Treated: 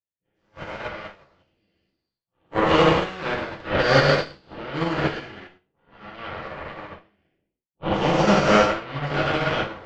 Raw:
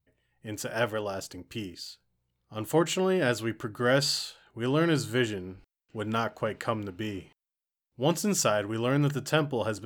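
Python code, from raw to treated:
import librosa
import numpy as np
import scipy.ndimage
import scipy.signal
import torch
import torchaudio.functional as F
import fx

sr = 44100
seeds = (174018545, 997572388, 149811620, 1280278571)

y = fx.spec_dilate(x, sr, span_ms=480)
y = scipy.signal.sosfilt(scipy.signal.butter(4, 41.0, 'highpass', fs=sr, output='sos'), y)
y = fx.cheby_harmonics(y, sr, harmonics=(2, 4, 7, 8), levels_db=(-9, -23, -19, -18), full_scale_db=-3.5)
y = scipy.ndimage.gaussian_filter1d(y, 2.4, mode='constant')
y = fx.rev_gated(y, sr, seeds[0], gate_ms=220, shape='falling', drr_db=-4.5)
y = fx.upward_expand(y, sr, threshold_db=-35.0, expansion=2.5)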